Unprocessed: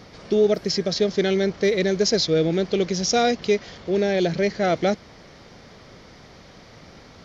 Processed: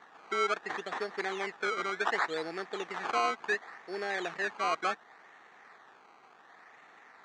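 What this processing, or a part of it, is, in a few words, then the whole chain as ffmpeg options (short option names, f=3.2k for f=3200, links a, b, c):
circuit-bent sampling toy: -af "acrusher=samples=17:mix=1:aa=0.000001:lfo=1:lforange=17:lforate=0.69,highpass=550,equalizer=f=560:t=q:w=4:g=-9,equalizer=f=800:t=q:w=4:g=6,equalizer=f=1.2k:t=q:w=4:g=5,equalizer=f=1.8k:t=q:w=4:g=10,equalizer=f=3k:t=q:w=4:g=-5,equalizer=f=5.1k:t=q:w=4:g=-9,lowpass=f=5.8k:w=0.5412,lowpass=f=5.8k:w=1.3066,volume=-8.5dB"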